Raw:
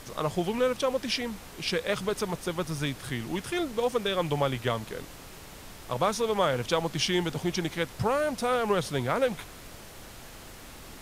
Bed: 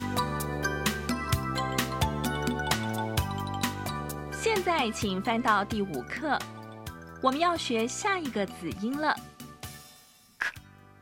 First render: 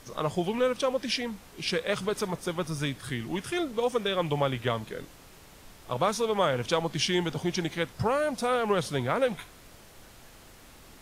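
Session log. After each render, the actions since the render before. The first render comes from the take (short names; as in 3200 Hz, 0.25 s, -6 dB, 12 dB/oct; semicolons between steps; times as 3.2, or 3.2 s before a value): noise print and reduce 6 dB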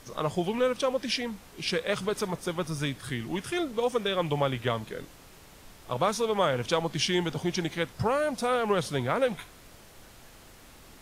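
nothing audible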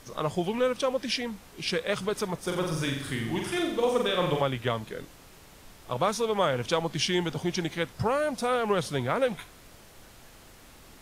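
2.39–4.42 flutter echo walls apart 7.6 m, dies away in 0.7 s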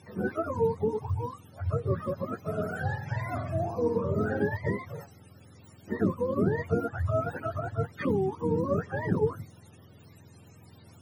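spectrum mirrored in octaves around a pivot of 480 Hz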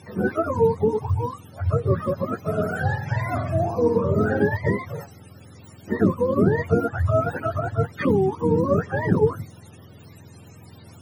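gain +7.5 dB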